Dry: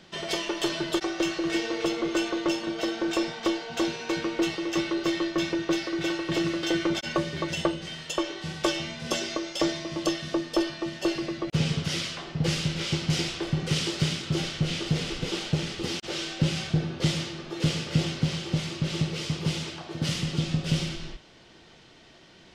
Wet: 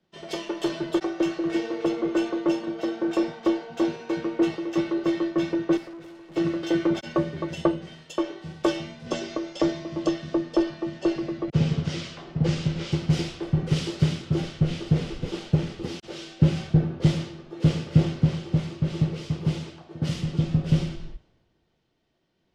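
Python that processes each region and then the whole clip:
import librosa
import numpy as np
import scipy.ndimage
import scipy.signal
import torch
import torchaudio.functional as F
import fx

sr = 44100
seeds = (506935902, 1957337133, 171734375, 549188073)

y = fx.chain(x, sr, fx.highpass(hz=100.0, slope=24),
    fx.tube_stage(drive_db=36.0, bias=0.7), at=(5.77, 6.36))
y = fx.chain(y, sr, fx.lowpass(hz=8300.0, slope=24),
    fx.band_squash(depth_pct=40), at=(9.06, 12.92))
y = fx.tilt_shelf(y, sr, db=6.5, hz=1500.0)
y = fx.band_widen(y, sr, depth_pct=70)
y = F.gain(torch.from_numpy(y), -3.0).numpy()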